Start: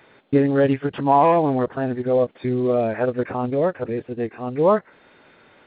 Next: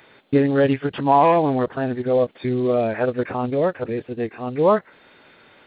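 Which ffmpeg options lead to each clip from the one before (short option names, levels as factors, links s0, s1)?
-af "highshelf=f=3300:g=9"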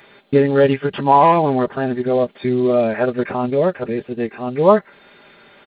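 -af "aecho=1:1:5:0.42,volume=1.41"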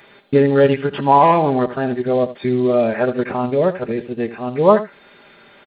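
-af "aecho=1:1:79:0.2"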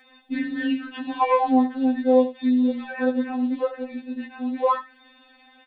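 -af "afftfilt=real='re*3.46*eq(mod(b,12),0)':imag='im*3.46*eq(mod(b,12),0)':win_size=2048:overlap=0.75,volume=0.631"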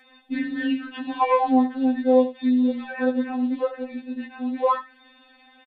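-af "aresample=32000,aresample=44100"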